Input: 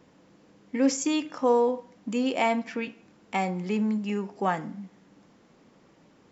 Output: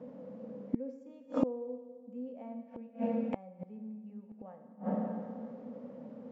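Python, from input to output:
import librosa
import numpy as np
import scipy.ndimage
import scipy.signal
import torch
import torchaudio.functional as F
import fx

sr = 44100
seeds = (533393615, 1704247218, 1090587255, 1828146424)

y = fx.double_bandpass(x, sr, hz=350.0, octaves=1.1)
y = fx.rev_schroeder(y, sr, rt60_s=1.9, comb_ms=28, drr_db=6.0)
y = fx.gate_flip(y, sr, shuts_db=-35.0, range_db=-31)
y = y * librosa.db_to_amplitude(18.0)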